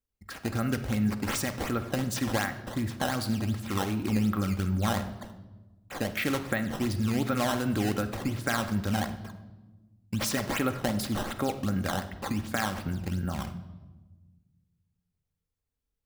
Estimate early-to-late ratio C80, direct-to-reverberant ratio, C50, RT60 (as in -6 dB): 13.5 dB, 6.5 dB, 11.5 dB, 1.2 s